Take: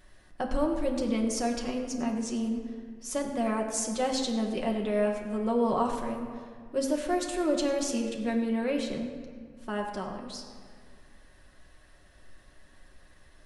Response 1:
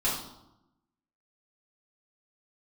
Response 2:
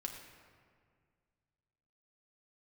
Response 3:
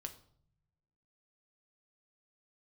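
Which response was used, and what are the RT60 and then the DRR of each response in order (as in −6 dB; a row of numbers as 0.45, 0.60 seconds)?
2; 0.90, 2.0, 0.60 seconds; −8.0, 0.0, 5.0 decibels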